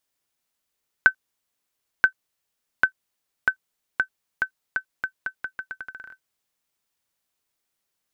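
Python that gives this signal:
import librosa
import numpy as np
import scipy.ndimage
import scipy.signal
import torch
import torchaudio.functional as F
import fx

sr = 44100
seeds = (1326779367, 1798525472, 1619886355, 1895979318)

y = fx.bouncing_ball(sr, first_gap_s=0.98, ratio=0.81, hz=1530.0, decay_ms=87.0, level_db=-3.0)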